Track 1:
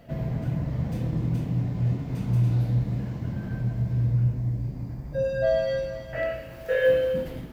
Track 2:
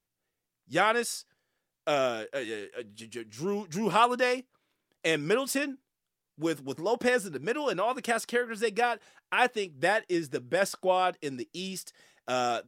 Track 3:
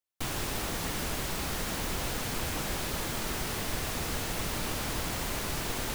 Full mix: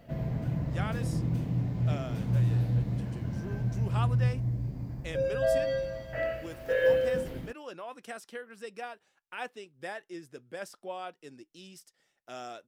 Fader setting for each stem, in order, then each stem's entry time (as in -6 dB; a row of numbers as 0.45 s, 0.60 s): -3.5 dB, -13.5 dB, mute; 0.00 s, 0.00 s, mute